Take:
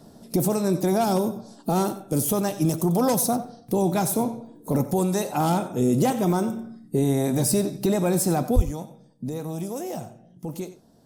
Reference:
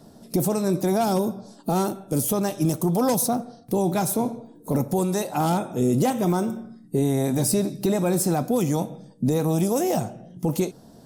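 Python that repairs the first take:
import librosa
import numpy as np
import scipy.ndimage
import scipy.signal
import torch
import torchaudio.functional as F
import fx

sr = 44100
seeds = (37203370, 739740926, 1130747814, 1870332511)

y = fx.highpass(x, sr, hz=140.0, slope=24, at=(8.55, 8.67), fade=0.02)
y = fx.fix_echo_inverse(y, sr, delay_ms=92, level_db=-14.5)
y = fx.gain(y, sr, db=fx.steps((0.0, 0.0), (8.56, 9.0)))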